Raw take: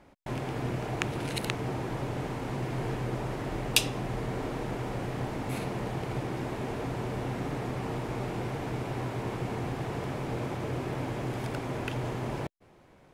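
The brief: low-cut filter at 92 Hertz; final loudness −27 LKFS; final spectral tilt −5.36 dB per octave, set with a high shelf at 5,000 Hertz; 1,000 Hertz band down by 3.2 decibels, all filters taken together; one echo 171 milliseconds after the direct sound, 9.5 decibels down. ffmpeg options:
ffmpeg -i in.wav -af "highpass=92,equalizer=frequency=1000:width_type=o:gain=-4,highshelf=frequency=5000:gain=-7.5,aecho=1:1:171:0.335,volume=7.5dB" out.wav

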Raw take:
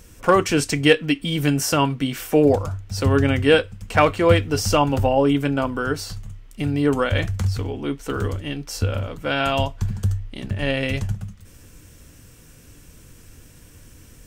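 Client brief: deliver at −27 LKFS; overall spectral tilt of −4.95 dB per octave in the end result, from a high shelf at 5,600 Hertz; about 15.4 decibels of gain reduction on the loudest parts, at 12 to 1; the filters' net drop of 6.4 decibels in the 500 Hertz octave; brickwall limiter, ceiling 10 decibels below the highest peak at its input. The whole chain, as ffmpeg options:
ffmpeg -i in.wav -af "equalizer=frequency=500:width_type=o:gain=-7.5,highshelf=frequency=5600:gain=-4,acompressor=threshold=-29dB:ratio=12,volume=9dB,alimiter=limit=-17dB:level=0:latency=1" out.wav

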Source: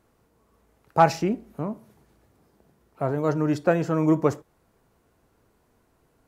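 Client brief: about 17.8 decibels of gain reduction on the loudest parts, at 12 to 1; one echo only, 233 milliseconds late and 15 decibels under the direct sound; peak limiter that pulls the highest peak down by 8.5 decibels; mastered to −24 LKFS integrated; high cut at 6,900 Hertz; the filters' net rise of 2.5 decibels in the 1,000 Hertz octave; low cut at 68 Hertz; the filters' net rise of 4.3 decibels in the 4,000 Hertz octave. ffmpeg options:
ffmpeg -i in.wav -af "highpass=68,lowpass=6900,equalizer=frequency=1000:width_type=o:gain=3,equalizer=frequency=4000:width_type=o:gain=6.5,acompressor=threshold=-27dB:ratio=12,alimiter=limit=-22.5dB:level=0:latency=1,aecho=1:1:233:0.178,volume=12dB" out.wav

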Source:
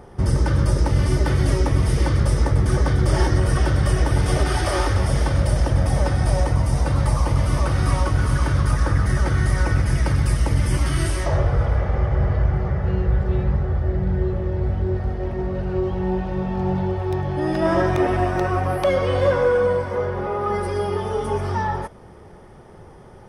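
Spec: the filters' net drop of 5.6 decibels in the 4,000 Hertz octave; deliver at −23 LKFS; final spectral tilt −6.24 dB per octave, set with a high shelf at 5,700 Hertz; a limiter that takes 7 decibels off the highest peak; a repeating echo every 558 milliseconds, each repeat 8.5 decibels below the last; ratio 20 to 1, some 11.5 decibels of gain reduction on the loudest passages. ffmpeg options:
ffmpeg -i in.wav -af "equalizer=frequency=4000:width_type=o:gain=-5,highshelf=frequency=5700:gain=-6.5,acompressor=threshold=-25dB:ratio=20,alimiter=limit=-23dB:level=0:latency=1,aecho=1:1:558|1116|1674|2232:0.376|0.143|0.0543|0.0206,volume=8.5dB" out.wav

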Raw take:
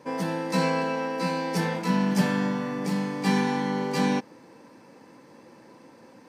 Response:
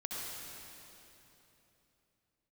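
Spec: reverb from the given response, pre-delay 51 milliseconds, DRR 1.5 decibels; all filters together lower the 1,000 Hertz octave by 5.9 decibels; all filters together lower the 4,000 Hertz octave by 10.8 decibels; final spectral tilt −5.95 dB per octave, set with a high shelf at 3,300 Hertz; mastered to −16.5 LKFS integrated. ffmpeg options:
-filter_complex "[0:a]equalizer=frequency=1000:width_type=o:gain=-6,highshelf=frequency=3300:gain=-7,equalizer=frequency=4000:width_type=o:gain=-8.5,asplit=2[link_01][link_02];[1:a]atrim=start_sample=2205,adelay=51[link_03];[link_02][link_03]afir=irnorm=-1:irlink=0,volume=-3.5dB[link_04];[link_01][link_04]amix=inputs=2:normalize=0,volume=8.5dB"

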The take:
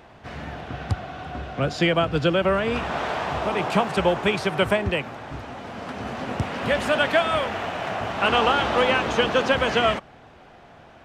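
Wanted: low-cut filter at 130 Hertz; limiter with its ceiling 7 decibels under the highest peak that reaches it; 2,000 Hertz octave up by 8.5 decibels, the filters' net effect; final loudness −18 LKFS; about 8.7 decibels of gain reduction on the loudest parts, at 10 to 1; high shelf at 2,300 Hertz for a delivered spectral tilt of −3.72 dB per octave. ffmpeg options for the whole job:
ffmpeg -i in.wav -af "highpass=130,equalizer=frequency=2000:width_type=o:gain=9,highshelf=frequency=2300:gain=4.5,acompressor=threshold=-20dB:ratio=10,volume=8dB,alimiter=limit=-7.5dB:level=0:latency=1" out.wav

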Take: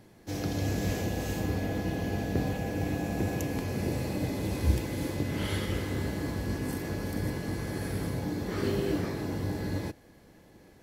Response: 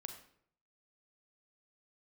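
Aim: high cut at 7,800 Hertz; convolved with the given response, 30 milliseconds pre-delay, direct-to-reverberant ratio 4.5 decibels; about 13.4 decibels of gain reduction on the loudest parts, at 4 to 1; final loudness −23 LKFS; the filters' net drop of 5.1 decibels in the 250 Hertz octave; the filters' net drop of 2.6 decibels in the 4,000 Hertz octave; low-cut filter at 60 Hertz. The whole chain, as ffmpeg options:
-filter_complex "[0:a]highpass=60,lowpass=7800,equalizer=frequency=250:width_type=o:gain=-7,equalizer=frequency=4000:width_type=o:gain=-3,acompressor=threshold=-37dB:ratio=4,asplit=2[link_01][link_02];[1:a]atrim=start_sample=2205,adelay=30[link_03];[link_02][link_03]afir=irnorm=-1:irlink=0,volume=-0.5dB[link_04];[link_01][link_04]amix=inputs=2:normalize=0,volume=15.5dB"

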